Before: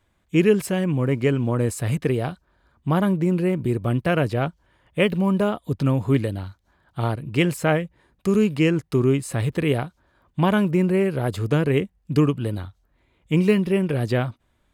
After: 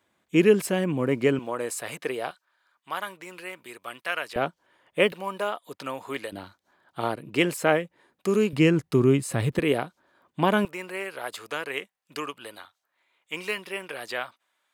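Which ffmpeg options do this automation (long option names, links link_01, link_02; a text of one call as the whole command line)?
ffmpeg -i in.wav -af "asetnsamples=nb_out_samples=441:pad=0,asendcmd='1.39 highpass f 570;2.31 highpass f 1200;4.36 highpass f 320;5.12 highpass f 720;6.32 highpass f 290;8.53 highpass f 120;9.59 highpass f 260;10.65 highpass f 920',highpass=220" out.wav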